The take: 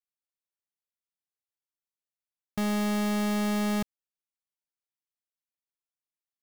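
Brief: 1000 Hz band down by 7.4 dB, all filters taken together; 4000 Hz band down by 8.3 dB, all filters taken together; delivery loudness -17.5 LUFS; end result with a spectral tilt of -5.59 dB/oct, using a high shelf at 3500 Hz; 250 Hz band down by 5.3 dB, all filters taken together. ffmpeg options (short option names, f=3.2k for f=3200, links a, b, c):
-af "equalizer=f=250:t=o:g=-6.5,equalizer=f=1k:t=o:g=-8.5,highshelf=f=3.5k:g=-6,equalizer=f=4k:t=o:g=-6,volume=16dB"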